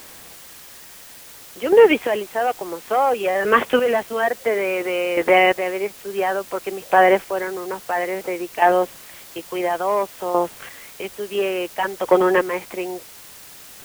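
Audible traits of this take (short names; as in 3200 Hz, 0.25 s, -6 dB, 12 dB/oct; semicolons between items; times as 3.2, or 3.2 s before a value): chopped level 0.58 Hz, depth 65%, duty 20%; a quantiser's noise floor 8-bit, dither triangular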